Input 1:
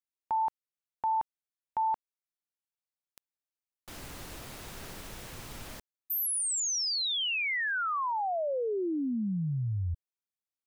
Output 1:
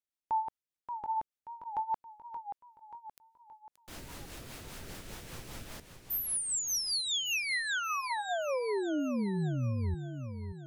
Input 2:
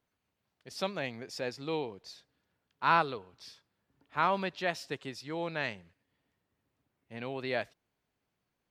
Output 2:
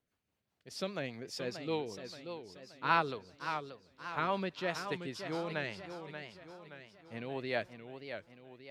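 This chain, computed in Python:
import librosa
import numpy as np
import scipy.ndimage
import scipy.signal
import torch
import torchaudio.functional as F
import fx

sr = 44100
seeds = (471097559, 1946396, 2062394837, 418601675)

y = fx.rotary(x, sr, hz=5.0)
y = fx.echo_warbled(y, sr, ms=578, feedback_pct=49, rate_hz=2.8, cents=147, wet_db=-8.5)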